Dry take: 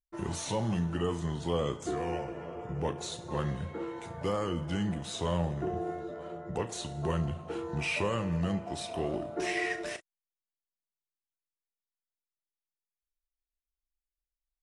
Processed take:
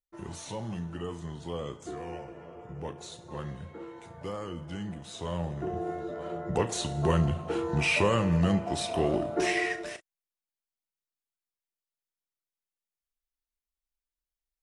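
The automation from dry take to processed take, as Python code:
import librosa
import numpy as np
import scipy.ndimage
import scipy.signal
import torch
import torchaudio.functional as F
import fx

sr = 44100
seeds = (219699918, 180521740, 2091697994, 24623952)

y = fx.gain(x, sr, db=fx.line((5.06, -5.5), (6.4, 6.0), (9.41, 6.0), (9.93, -2.0)))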